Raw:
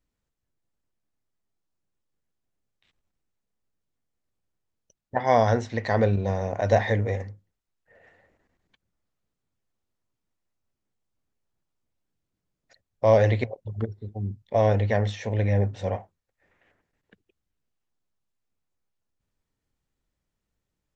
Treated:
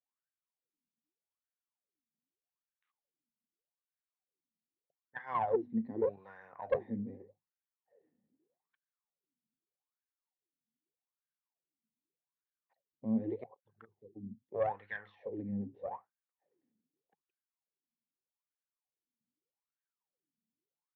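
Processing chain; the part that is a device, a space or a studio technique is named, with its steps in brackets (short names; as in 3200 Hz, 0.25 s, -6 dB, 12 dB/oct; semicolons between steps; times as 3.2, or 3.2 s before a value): wah-wah guitar rig (wah 0.82 Hz 220–1600 Hz, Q 13; tube stage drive 22 dB, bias 0.35; speaker cabinet 92–4300 Hz, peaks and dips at 150 Hz +9 dB, 630 Hz -9 dB, 1400 Hz -8 dB); gain +4.5 dB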